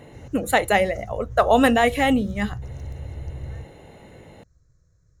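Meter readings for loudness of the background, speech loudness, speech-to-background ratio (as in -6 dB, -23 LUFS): -37.0 LUFS, -20.5 LUFS, 16.5 dB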